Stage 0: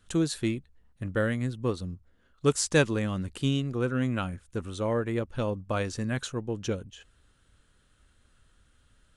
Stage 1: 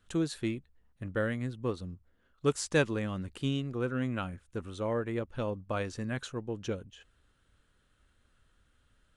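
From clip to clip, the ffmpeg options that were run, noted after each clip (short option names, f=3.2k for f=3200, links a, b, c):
-af "bass=f=250:g=-2,treble=f=4k:g=-5,volume=-3.5dB"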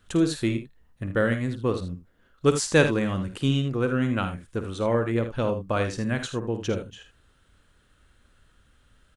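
-af "aeval=exprs='0.178*(cos(1*acos(clip(val(0)/0.178,-1,1)))-cos(1*PI/2))+0.00126*(cos(6*acos(clip(val(0)/0.178,-1,1)))-cos(6*PI/2))':c=same,aecho=1:1:52|79:0.299|0.282,volume=7.5dB"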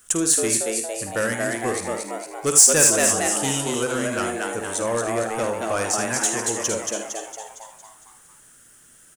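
-filter_complex "[0:a]asplit=8[a][b][c][d][e][f][g][h];[b]adelay=229,afreqshift=110,volume=-4dB[i];[c]adelay=458,afreqshift=220,volume=-9.8dB[j];[d]adelay=687,afreqshift=330,volume=-15.7dB[k];[e]adelay=916,afreqshift=440,volume=-21.5dB[l];[f]adelay=1145,afreqshift=550,volume=-27.4dB[m];[g]adelay=1374,afreqshift=660,volume=-33.2dB[n];[h]adelay=1603,afreqshift=770,volume=-39.1dB[o];[a][i][j][k][l][m][n][o]amix=inputs=8:normalize=0,asplit=2[p][q];[q]highpass=f=720:p=1,volume=16dB,asoftclip=type=tanh:threshold=-6.5dB[r];[p][r]amix=inputs=2:normalize=0,lowpass=f=5.2k:p=1,volume=-6dB,aexciter=amount=7.7:drive=9:freq=5.9k,volume=-5.5dB"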